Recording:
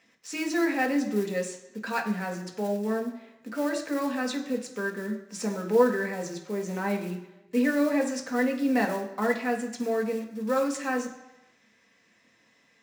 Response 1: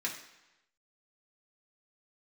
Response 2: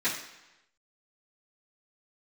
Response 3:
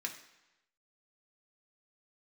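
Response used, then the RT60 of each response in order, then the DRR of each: 3; 1.0, 1.0, 1.0 s; -4.0, -13.0, 0.5 dB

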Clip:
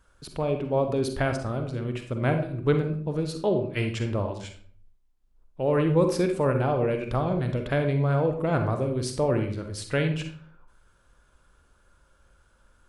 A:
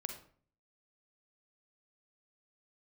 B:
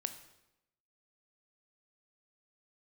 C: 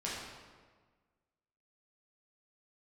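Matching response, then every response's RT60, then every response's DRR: A; 0.50, 0.90, 1.5 s; 5.0, 8.5, -7.0 dB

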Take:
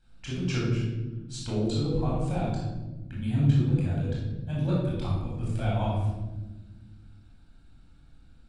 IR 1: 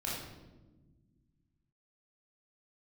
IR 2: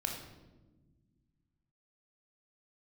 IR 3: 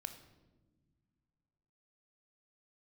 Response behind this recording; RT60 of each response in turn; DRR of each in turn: 1; 1.2 s, 1.2 s, not exponential; -6.5, 1.0, 7.5 dB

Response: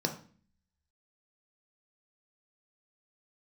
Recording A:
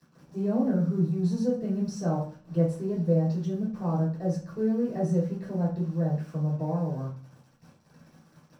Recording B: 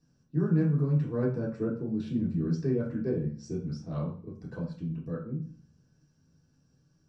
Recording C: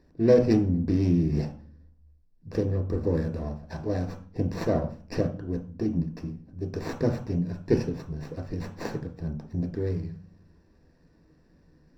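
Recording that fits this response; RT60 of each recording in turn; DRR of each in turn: C; 0.45, 0.45, 0.45 s; -10.5, -6.0, 3.0 dB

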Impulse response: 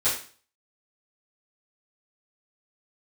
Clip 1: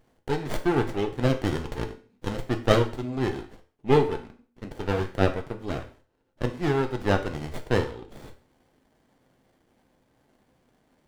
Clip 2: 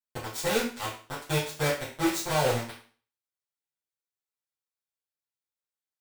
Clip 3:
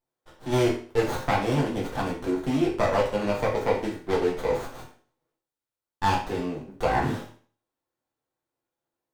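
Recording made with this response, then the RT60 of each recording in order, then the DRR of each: 2; 0.40, 0.40, 0.40 s; 5.0, -13.5, -4.5 dB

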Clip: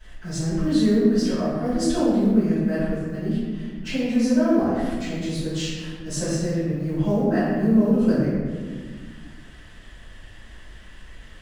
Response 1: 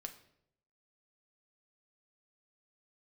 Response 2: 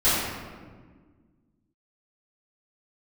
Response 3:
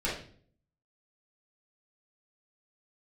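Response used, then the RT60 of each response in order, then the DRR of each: 2; 0.75, 1.6, 0.50 s; 5.0, -16.5, -8.0 dB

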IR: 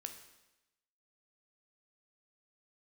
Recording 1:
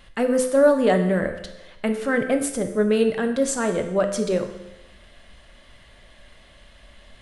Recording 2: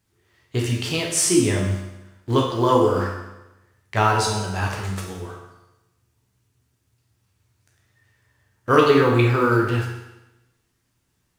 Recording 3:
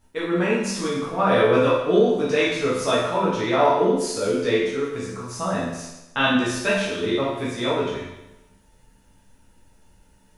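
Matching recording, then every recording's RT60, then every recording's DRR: 1; 0.95, 0.95, 0.95 s; 5.5, -1.5, -8.0 dB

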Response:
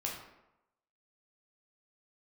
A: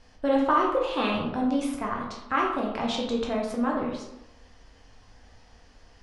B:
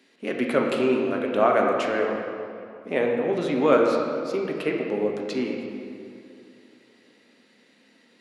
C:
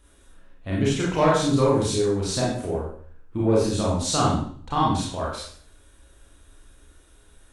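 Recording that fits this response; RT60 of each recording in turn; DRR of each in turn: A; 0.90, 2.6, 0.50 s; -2.5, 0.0, -6.0 dB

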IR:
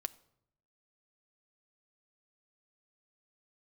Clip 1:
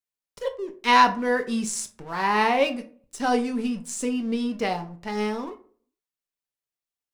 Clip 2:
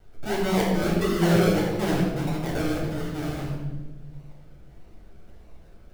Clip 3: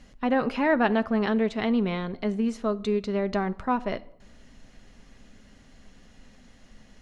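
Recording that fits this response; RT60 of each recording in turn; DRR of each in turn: 3; 0.45, 1.2, 0.75 s; 5.5, -6.5, 11.0 dB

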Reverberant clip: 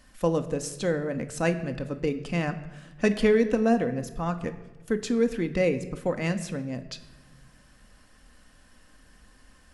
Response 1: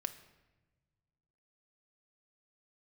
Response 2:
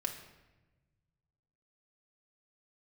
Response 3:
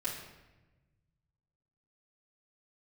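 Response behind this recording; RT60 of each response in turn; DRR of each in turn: 1; 1.2, 1.1, 1.1 s; 7.5, 1.5, -8.5 dB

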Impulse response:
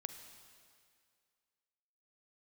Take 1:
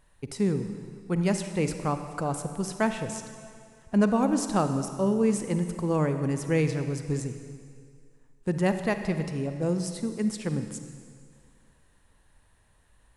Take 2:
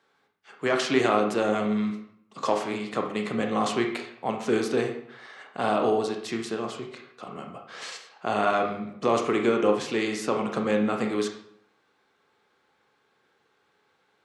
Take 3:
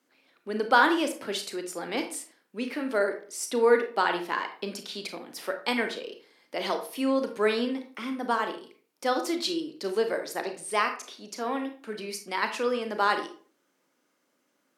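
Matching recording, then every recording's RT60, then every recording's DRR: 1; 2.2, 0.70, 0.45 s; 8.0, 3.0, 5.5 dB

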